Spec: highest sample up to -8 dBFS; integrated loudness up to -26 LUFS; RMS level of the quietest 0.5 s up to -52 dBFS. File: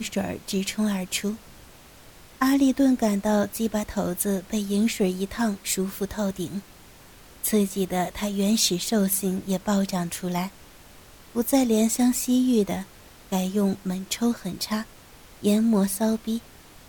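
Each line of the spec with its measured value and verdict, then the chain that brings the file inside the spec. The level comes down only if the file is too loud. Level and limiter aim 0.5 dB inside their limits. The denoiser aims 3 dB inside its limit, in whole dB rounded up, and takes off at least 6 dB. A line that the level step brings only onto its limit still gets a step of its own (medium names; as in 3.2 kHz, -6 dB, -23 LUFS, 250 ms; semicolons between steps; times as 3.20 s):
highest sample -9.0 dBFS: pass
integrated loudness -25.0 LUFS: fail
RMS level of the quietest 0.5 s -49 dBFS: fail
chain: noise reduction 6 dB, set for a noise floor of -49 dBFS; trim -1.5 dB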